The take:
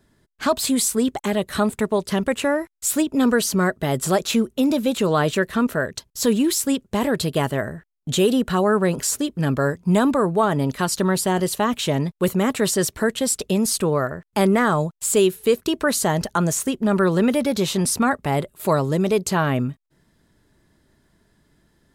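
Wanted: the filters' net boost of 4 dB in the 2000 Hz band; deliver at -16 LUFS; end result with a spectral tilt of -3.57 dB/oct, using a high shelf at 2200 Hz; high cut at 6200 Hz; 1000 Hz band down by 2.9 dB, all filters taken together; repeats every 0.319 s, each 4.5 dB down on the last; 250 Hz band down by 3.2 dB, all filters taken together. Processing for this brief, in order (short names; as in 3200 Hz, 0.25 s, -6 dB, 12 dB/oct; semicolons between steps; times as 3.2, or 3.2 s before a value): LPF 6200 Hz; bell 250 Hz -4 dB; bell 1000 Hz -6.5 dB; bell 2000 Hz +4.5 dB; high shelf 2200 Hz +6.5 dB; feedback echo 0.319 s, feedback 60%, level -4.5 dB; gain +4 dB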